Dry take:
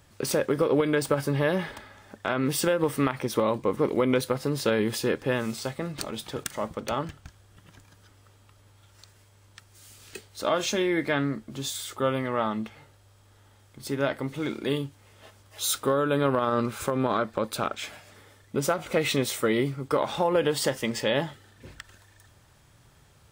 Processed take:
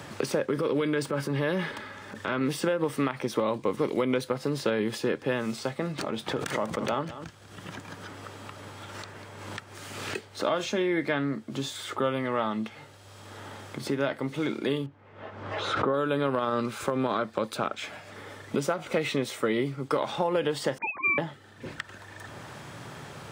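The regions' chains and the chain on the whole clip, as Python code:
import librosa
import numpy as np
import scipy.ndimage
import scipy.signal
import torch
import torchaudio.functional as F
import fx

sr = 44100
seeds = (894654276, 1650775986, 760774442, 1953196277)

y = fx.chain(x, sr, fx.peak_eq(hz=720.0, db=-13.0, octaves=0.24),
    fx.transient(attack_db=-10, sustain_db=3), at=(0.49, 2.41))
y = fx.chain(y, sr, fx.echo_single(ms=194, db=-16.5),
    fx.pre_swell(db_per_s=57.0), at=(6.27, 10.25))
y = fx.chain(y, sr, fx.lowpass(hz=1700.0, slope=12),
    fx.pre_swell(db_per_s=57.0), at=(14.86, 15.94))
y = fx.chain(y, sr, fx.sine_speech(),
    fx.freq_invert(carrier_hz=2900), at=(20.78, 21.18))
y = scipy.signal.sosfilt(scipy.signal.butter(2, 120.0, 'highpass', fs=sr, output='sos'), y)
y = fx.high_shelf(y, sr, hz=9100.0, db=-10.5)
y = fx.band_squash(y, sr, depth_pct=70)
y = F.gain(torch.from_numpy(y), -1.5).numpy()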